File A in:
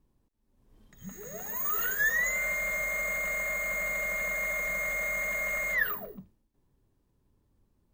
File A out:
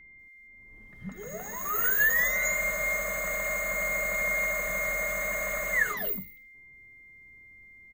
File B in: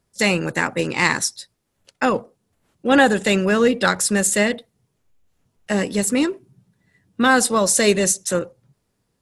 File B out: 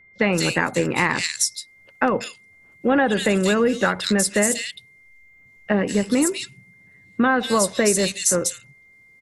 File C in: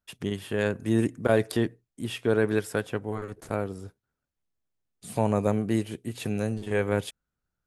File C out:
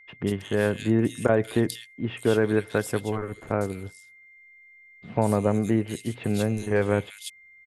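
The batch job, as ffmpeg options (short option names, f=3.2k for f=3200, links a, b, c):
-filter_complex "[0:a]acrossover=split=2700[a][b];[b]adelay=190[c];[a][c]amix=inputs=2:normalize=0,acompressor=threshold=-20dB:ratio=4,aeval=exprs='val(0)+0.002*sin(2*PI*2100*n/s)':c=same,volume=4dB"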